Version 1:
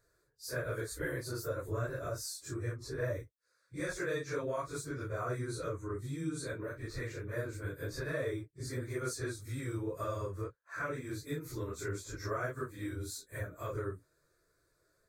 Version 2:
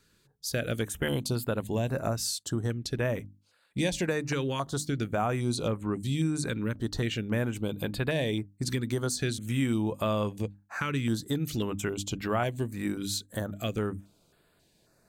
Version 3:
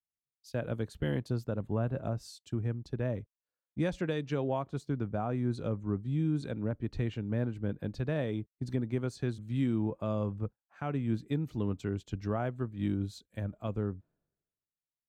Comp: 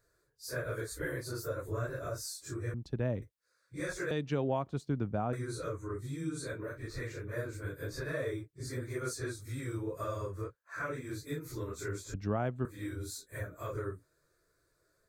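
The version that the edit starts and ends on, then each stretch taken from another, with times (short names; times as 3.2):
1
2.74–3.22 from 3
4.11–5.33 from 3
12.14–12.65 from 3
not used: 2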